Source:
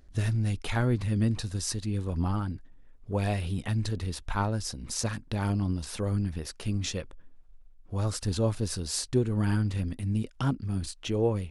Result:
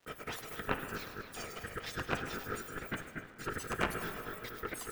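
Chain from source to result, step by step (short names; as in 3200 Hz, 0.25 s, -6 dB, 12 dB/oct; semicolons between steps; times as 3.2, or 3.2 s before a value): spectrum mirrored in octaves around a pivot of 1300 Hz; low shelf 130 Hz -9 dB; split-band echo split 1500 Hz, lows 0.554 s, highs 0.244 s, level -8 dB; added harmonics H 3 -7 dB, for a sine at -14.5 dBFS; gate with hold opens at -49 dBFS; speed mistake 33 rpm record played at 78 rpm; on a send at -10.5 dB: reverb RT60 2.5 s, pre-delay 6 ms; on the sum: soft clip -26 dBFS, distortion -8 dB; ring modulator 870 Hz; crackle 530/s -62 dBFS; high shelf 4000 Hz -10.5 dB; gain +12 dB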